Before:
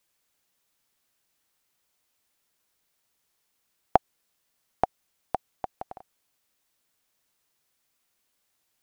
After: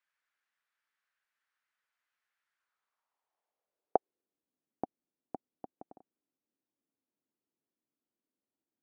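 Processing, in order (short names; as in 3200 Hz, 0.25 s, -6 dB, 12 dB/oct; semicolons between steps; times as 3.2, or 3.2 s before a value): band-pass sweep 1600 Hz -> 280 Hz, 2.53–4.47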